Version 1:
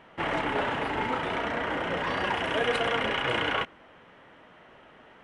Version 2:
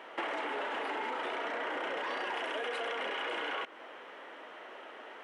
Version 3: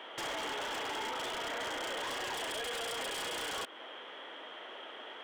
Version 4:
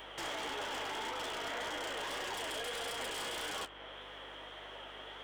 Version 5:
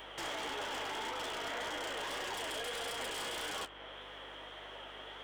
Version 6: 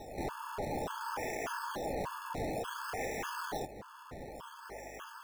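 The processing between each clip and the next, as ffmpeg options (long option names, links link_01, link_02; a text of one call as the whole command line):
ffmpeg -i in.wav -af "highpass=frequency=320:width=0.5412,highpass=frequency=320:width=1.3066,alimiter=level_in=1.5dB:limit=-24dB:level=0:latency=1:release=27,volume=-1.5dB,acompressor=threshold=-39dB:ratio=6,volume=5.5dB" out.wav
ffmpeg -i in.wav -filter_complex "[0:a]equalizer=frequency=3300:width=6.4:gain=15,acrossover=split=120|770[link_01][link_02][link_03];[link_02]alimiter=level_in=13.5dB:limit=-24dB:level=0:latency=1,volume=-13.5dB[link_04];[link_03]aeval=exprs='0.0188*(abs(mod(val(0)/0.0188+3,4)-2)-1)':channel_layout=same[link_05];[link_01][link_04][link_05]amix=inputs=3:normalize=0" out.wav
ffmpeg -i in.wav -filter_complex "[0:a]acrossover=split=420|1400|5400[link_01][link_02][link_03][link_04];[link_04]acompressor=mode=upward:threshold=-56dB:ratio=2.5[link_05];[link_01][link_02][link_03][link_05]amix=inputs=4:normalize=0,flanger=delay=9.7:depth=9.3:regen=38:speed=1.7:shape=sinusoidal,aeval=exprs='val(0)+0.000631*(sin(2*PI*50*n/s)+sin(2*PI*2*50*n/s)/2+sin(2*PI*3*50*n/s)/3+sin(2*PI*4*50*n/s)/4+sin(2*PI*5*50*n/s)/5)':channel_layout=same,volume=2dB" out.wav
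ffmpeg -i in.wav -af anull out.wav
ffmpeg -i in.wav -filter_complex "[0:a]acrossover=split=720|1400[link_01][link_02][link_03];[link_03]acrusher=samples=19:mix=1:aa=0.000001:lfo=1:lforange=19:lforate=0.56[link_04];[link_01][link_02][link_04]amix=inputs=3:normalize=0,afftfilt=real='re*gt(sin(2*PI*1.7*pts/sr)*(1-2*mod(floor(b*sr/1024/870),2)),0)':imag='im*gt(sin(2*PI*1.7*pts/sr)*(1-2*mod(floor(b*sr/1024/870),2)),0)':win_size=1024:overlap=0.75,volume=5.5dB" out.wav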